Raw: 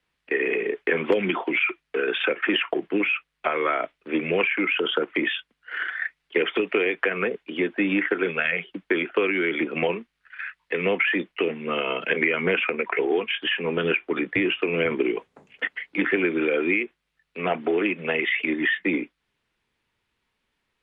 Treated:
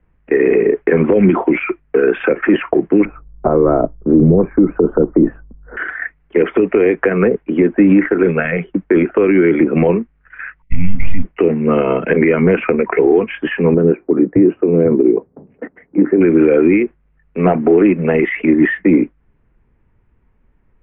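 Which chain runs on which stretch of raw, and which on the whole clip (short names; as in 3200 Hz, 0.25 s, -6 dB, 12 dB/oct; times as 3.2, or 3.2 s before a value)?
3.05–5.77 LPF 1200 Hz 24 dB/oct + tilt -4 dB/oct
10.62–11.25 half-wave gain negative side -12 dB + brick-wall FIR band-stop 280–1900 Hz + modulation noise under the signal 12 dB
13.74–16.21 band-pass 340 Hz, Q 0.74 + air absorption 300 m
whole clip: LPF 2300 Hz 24 dB/oct; tilt -4.5 dB/oct; maximiser +10.5 dB; gain -1.5 dB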